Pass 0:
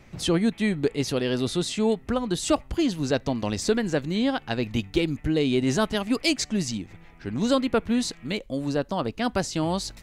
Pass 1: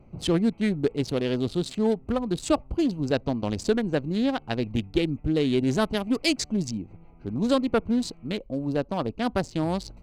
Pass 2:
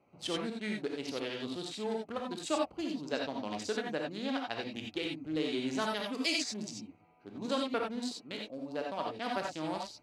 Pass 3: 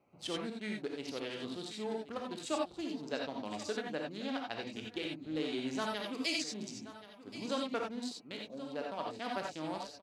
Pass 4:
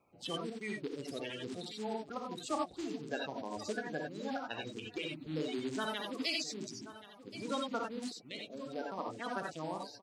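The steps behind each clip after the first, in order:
Wiener smoothing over 25 samples
weighting filter A; non-linear reverb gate 0.11 s rising, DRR 0 dB; gain -8 dB
echo 1.078 s -15 dB; gain -3 dB
bin magnitudes rounded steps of 30 dB

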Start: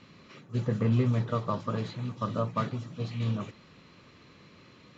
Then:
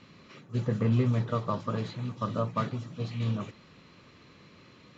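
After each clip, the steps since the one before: nothing audible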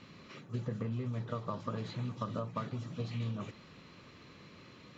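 compressor 12:1, threshold -33 dBFS, peak gain reduction 13.5 dB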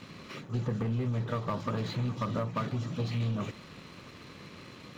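sample leveller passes 2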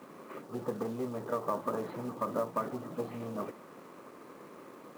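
Butterworth band-pass 610 Hz, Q 0.63; companded quantiser 6-bit; gain +3 dB

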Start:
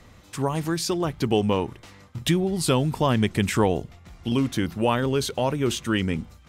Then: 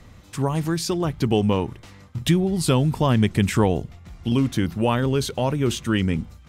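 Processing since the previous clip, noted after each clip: tone controls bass +5 dB, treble 0 dB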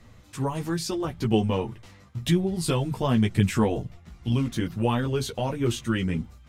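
chorus voices 6, 0.54 Hz, delay 13 ms, depth 4.8 ms; gain -1.5 dB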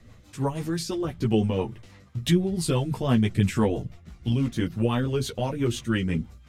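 rotary speaker horn 6 Hz; gain +2 dB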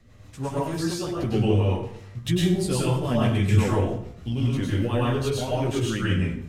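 plate-style reverb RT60 0.64 s, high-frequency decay 0.75×, pre-delay 90 ms, DRR -5.5 dB; gain -4 dB

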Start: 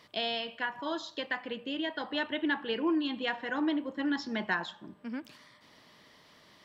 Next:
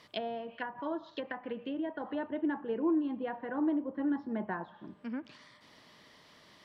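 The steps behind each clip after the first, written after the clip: treble ducked by the level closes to 880 Hz, closed at -31.5 dBFS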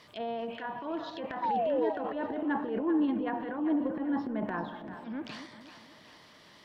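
transient shaper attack -9 dB, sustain +9 dB; painted sound fall, 1.42–1.9, 410–1000 Hz -31 dBFS; split-band echo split 650 Hz, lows 0.237 s, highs 0.39 s, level -11 dB; gain +2 dB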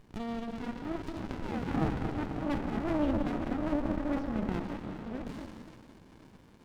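reverse delay 0.53 s, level -12.5 dB; reverb RT60 1.1 s, pre-delay 0.11 s, DRR 5.5 dB; running maximum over 65 samples; gain +1.5 dB

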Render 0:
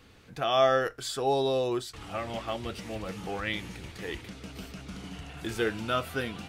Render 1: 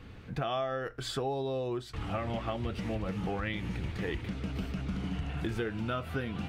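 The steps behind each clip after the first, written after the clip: tone controls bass +7 dB, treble -11 dB; compressor 16:1, threshold -33 dBFS, peak gain reduction 16 dB; gain +3.5 dB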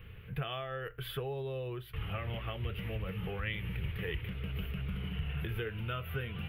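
EQ curve 150 Hz 0 dB, 280 Hz -17 dB, 430 Hz -2 dB, 740 Hz -12 dB, 1100 Hz -6 dB, 3000 Hz +3 dB, 4400 Hz -18 dB, 7500 Hz -27 dB, 12000 Hz +11 dB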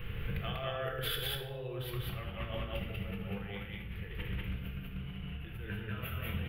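negative-ratio compressor -43 dBFS, ratio -0.5; loudspeakers at several distances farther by 27 m -12 dB, 66 m -1 dB; shoebox room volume 320 m³, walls mixed, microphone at 0.82 m; gain +1 dB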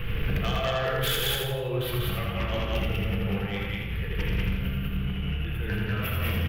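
sine folder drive 7 dB, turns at -23 dBFS; feedback echo 83 ms, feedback 40%, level -4.5 dB

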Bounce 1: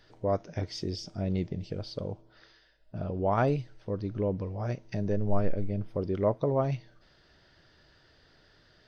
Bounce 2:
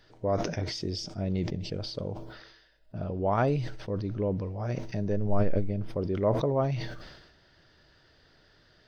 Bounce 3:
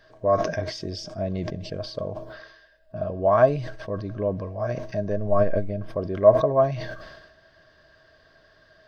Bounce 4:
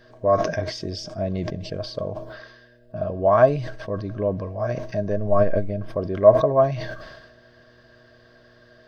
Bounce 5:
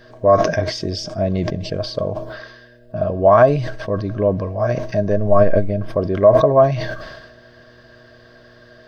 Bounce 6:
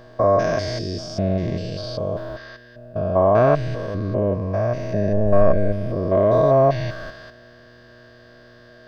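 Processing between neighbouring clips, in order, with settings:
sustainer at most 53 dB/s
small resonant body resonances 640/1100/1600 Hz, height 18 dB, ringing for 70 ms
buzz 120 Hz, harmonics 5, -59 dBFS -1 dB/oct; gain +2 dB
maximiser +7.5 dB; gain -1 dB
stepped spectrum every 0.2 s

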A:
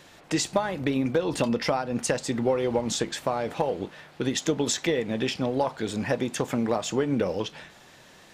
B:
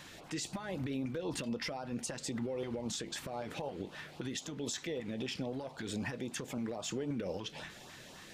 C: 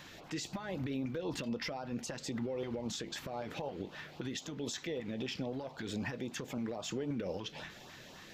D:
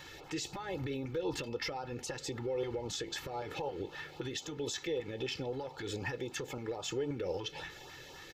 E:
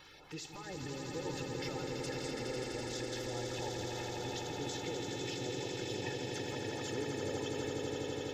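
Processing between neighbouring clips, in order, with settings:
compressor 6:1, threshold -33 dBFS, peak gain reduction 14 dB; limiter -29 dBFS, peak gain reduction 11 dB; LFO notch saw up 3.8 Hz 380–2300 Hz; gain +1 dB
bell 9200 Hz -13.5 dB 0.4 oct
comb 2.3 ms, depth 74%
bin magnitudes rounded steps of 30 dB; swelling echo 83 ms, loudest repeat 8, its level -6.5 dB; crackle 11/s -48 dBFS; gain -6 dB

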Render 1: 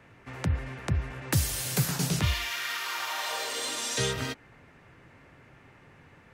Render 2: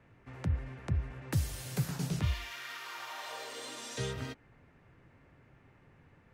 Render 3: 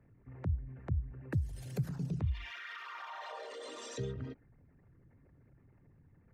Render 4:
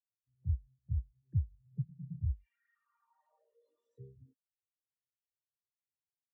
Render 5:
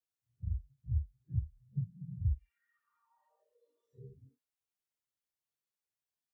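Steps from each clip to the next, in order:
tilt -1.5 dB/oct; gain -9 dB
formant sharpening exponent 2; gain -2 dB
spectral expander 2.5:1
phase scrambler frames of 0.1 s

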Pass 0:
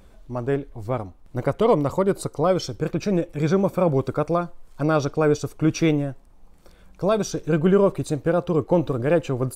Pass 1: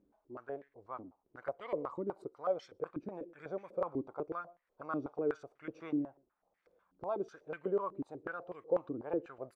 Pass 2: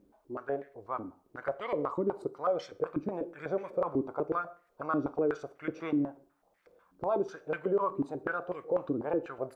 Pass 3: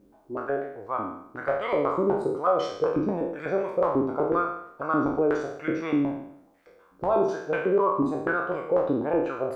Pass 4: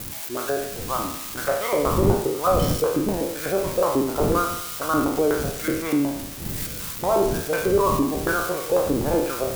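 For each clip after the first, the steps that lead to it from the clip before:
echo 0.122 s -24 dB; stepped band-pass 8.1 Hz 290–1900 Hz; gain -7.5 dB
limiter -29.5 dBFS, peak gain reduction 9 dB; on a send at -14 dB: reverb RT60 0.50 s, pre-delay 7 ms; on the sum: gain +8.5 dB
spectral trails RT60 0.72 s; gain +4.5 dB
switching spikes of -22.5 dBFS; wind noise 200 Hz -34 dBFS; gain +2.5 dB

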